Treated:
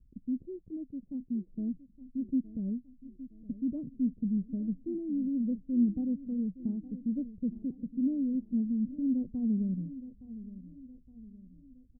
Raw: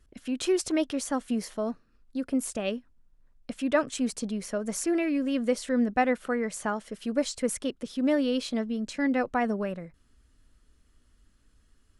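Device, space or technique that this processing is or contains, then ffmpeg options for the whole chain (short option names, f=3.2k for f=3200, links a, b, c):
the neighbour's flat through the wall: -filter_complex "[0:a]asettb=1/sr,asplit=3[a][b][c];[a]atrim=end=0.454[d];[b]atrim=start=0.45:end=1.46,asetpts=PTS-STARTPTS,afade=t=in:d=0.004:c=qsin,afade=t=out:st=1.006:d=0.004:c=qsin,tiltshelf=f=1.3k:g=-5.5[e];[c]atrim=start=1.456[f];[d][e]acrossfade=d=0.004:c1=hsin:c2=qsin[g];[g][f]acrossfade=d=0.004:c1=qsin:c2=hsin,lowpass=f=250:w=0.5412,lowpass=f=250:w=1.3066,equalizer=f=180:t=o:w=0.45:g=5,aecho=1:1:866|1732|2598|3464:0.168|0.0772|0.0355|0.0163,volume=1dB"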